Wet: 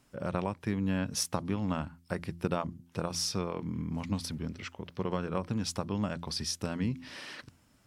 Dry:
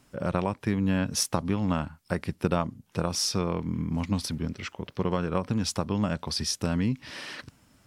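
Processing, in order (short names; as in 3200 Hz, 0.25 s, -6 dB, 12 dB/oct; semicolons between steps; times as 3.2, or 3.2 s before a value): de-hum 85.27 Hz, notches 4; gain -5 dB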